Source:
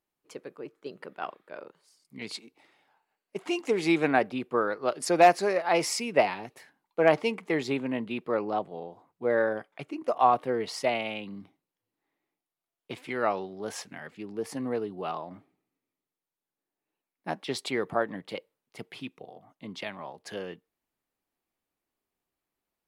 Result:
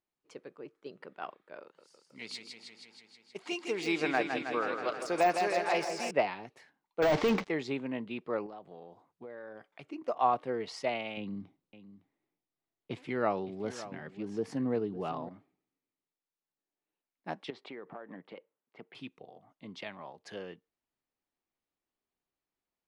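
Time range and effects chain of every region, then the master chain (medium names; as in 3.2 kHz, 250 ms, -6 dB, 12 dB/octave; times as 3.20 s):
1.62–6.11 s: tilt EQ +2 dB/octave + modulated delay 159 ms, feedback 72%, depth 54 cents, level -7 dB
7.02–7.48 s: CVSD coder 32 kbps + compression 1.5:1, threshold -30 dBFS + waveshaping leveller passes 5
8.46–9.84 s: treble shelf 4.8 kHz +5 dB + compression 5:1, threshold -38 dBFS
11.17–15.29 s: bass shelf 400 Hz +9.5 dB + delay 560 ms -14.5 dB
17.50–18.95 s: band-pass 190–2100 Hz + compression 8:1, threshold -35 dBFS
whole clip: low-pass 6.7 kHz 12 dB/octave; de-esser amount 75%; trim -5.5 dB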